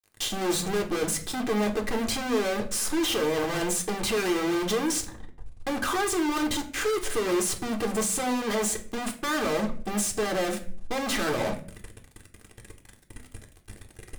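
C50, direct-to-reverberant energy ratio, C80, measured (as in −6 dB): 13.0 dB, 1.5 dB, 17.0 dB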